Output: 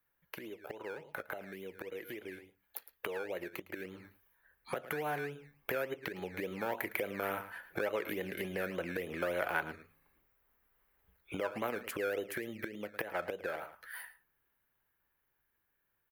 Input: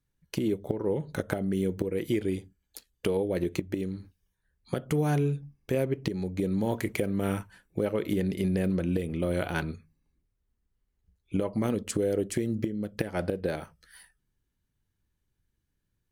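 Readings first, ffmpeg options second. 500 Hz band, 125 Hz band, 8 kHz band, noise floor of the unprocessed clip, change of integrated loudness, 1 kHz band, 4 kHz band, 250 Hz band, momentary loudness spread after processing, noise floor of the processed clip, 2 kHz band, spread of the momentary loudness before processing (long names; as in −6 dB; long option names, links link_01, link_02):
−8.0 dB, −19.5 dB, −10.0 dB, −79 dBFS, −9.0 dB, −1.0 dB, −5.5 dB, −15.5 dB, 11 LU, −80 dBFS, +1.5 dB, 9 LU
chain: -filter_complex "[0:a]lowshelf=frequency=230:gain=-10,asplit=2[link_01][link_02];[link_02]aecho=0:1:109:0.141[link_03];[link_01][link_03]amix=inputs=2:normalize=0,acompressor=threshold=-47dB:ratio=4,acrossover=split=810[link_04][link_05];[link_04]acrusher=samples=18:mix=1:aa=0.000001:lfo=1:lforange=10.8:lforate=3.5[link_06];[link_05]aexciter=amount=13.3:drive=2.9:freq=11000[link_07];[link_06][link_07]amix=inputs=2:normalize=0,dynaudnorm=framelen=320:gausssize=21:maxgain=8dB,acrossover=split=530 2200:gain=0.158 1 0.0891[link_08][link_09][link_10];[link_08][link_09][link_10]amix=inputs=3:normalize=0,volume=11dB"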